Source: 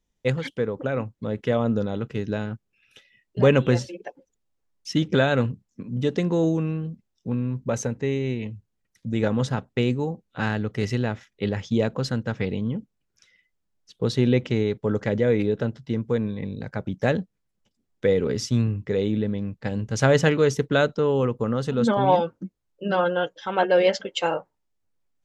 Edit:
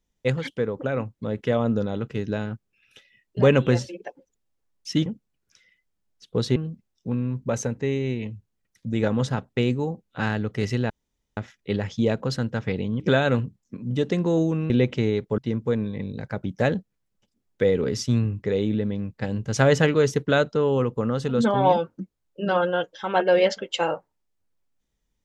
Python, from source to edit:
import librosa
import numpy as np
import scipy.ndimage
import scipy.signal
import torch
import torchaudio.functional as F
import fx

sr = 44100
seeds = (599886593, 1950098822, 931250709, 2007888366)

y = fx.edit(x, sr, fx.swap(start_s=5.06, length_s=1.7, other_s=12.73, other_length_s=1.5),
    fx.insert_room_tone(at_s=11.1, length_s=0.47),
    fx.cut(start_s=14.91, length_s=0.9), tone=tone)